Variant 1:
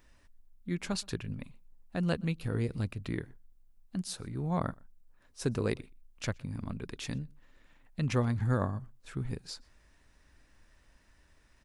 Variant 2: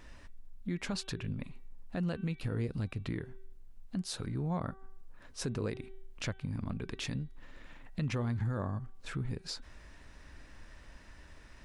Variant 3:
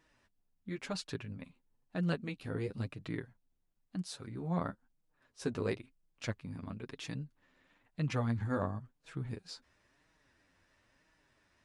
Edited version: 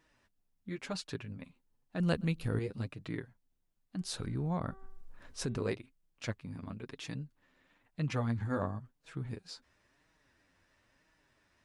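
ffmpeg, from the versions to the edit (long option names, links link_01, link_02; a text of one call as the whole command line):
ffmpeg -i take0.wav -i take1.wav -i take2.wav -filter_complex "[2:a]asplit=3[link_01][link_02][link_03];[link_01]atrim=end=2.002[link_04];[0:a]atrim=start=1.998:end=2.592[link_05];[link_02]atrim=start=2.588:end=4.012[link_06];[1:a]atrim=start=4.008:end=5.582[link_07];[link_03]atrim=start=5.578[link_08];[link_04][link_05]acrossfade=duration=0.004:curve1=hsin:curve2=hsin[link_09];[link_09][link_06]acrossfade=duration=0.004:curve1=hsin:curve2=hsin[link_10];[link_10][link_07]acrossfade=duration=0.004:curve1=hsin:curve2=hsin[link_11];[link_11][link_08]acrossfade=duration=0.004:curve1=hsin:curve2=hsin" out.wav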